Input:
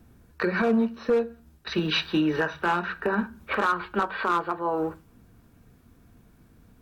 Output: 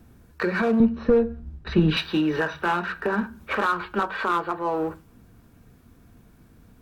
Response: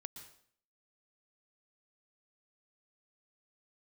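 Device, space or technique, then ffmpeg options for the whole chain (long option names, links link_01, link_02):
parallel distortion: -filter_complex "[0:a]asplit=2[link_01][link_02];[link_02]asoftclip=type=hard:threshold=-33dB,volume=-8.5dB[link_03];[link_01][link_03]amix=inputs=2:normalize=0,asettb=1/sr,asplit=3[link_04][link_05][link_06];[link_04]atrim=end=0.804[link_07];[link_05]atrim=start=0.8:end=1.97,asetpts=PTS-STARTPTS,afade=type=in:duration=0.004:curve=qsin,afade=type=out:start_time=1.166:duration=0.004:curve=qsin,aemphasis=mode=reproduction:type=riaa[link_08];[link_06]atrim=start=1.966[link_09];[link_07][link_08]acrossfade=duration=0.004:curve1=hsin:curve2=qsin[link_10];[link_10][link_09]acrossfade=duration=0.004:curve1=qsin:curve2=hsin"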